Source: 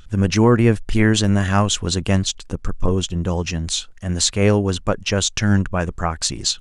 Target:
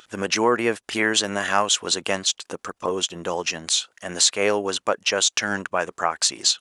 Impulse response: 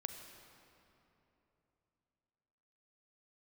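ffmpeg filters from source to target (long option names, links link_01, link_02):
-filter_complex "[0:a]highpass=510,asplit=2[link_01][link_02];[link_02]acompressor=threshold=-28dB:ratio=6,volume=-1dB[link_03];[link_01][link_03]amix=inputs=2:normalize=0,volume=-1dB"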